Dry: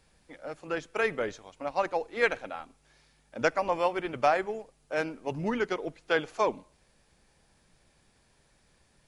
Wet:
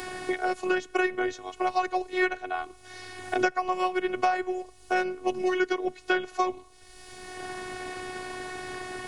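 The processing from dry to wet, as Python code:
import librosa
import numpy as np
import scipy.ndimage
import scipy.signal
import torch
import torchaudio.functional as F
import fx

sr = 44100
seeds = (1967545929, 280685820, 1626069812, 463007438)

y = fx.robotise(x, sr, hz=369.0)
y = fx.band_squash(y, sr, depth_pct=100)
y = F.gain(torch.from_numpy(y), 5.5).numpy()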